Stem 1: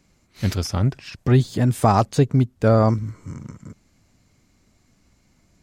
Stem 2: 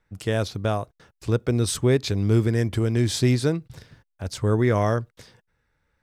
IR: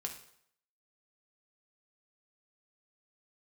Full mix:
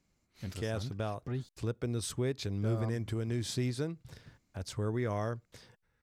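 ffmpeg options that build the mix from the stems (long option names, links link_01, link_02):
-filter_complex "[0:a]volume=-14.5dB,asplit=3[link_01][link_02][link_03];[link_01]atrim=end=1.49,asetpts=PTS-STARTPTS,afade=type=out:start_time=1.486:duration=0.004:curve=hsin[link_04];[link_02]atrim=start=1.49:end=2.62,asetpts=PTS-STARTPTS,volume=0[link_05];[link_03]atrim=start=2.62,asetpts=PTS-STARTPTS,afade=type=in:duration=0.004:curve=hsin[link_06];[link_04][link_05][link_06]concat=n=3:v=0:a=1[link_07];[1:a]adelay=350,volume=-4.5dB[link_08];[link_07][link_08]amix=inputs=2:normalize=0,acompressor=threshold=-45dB:ratio=1.5"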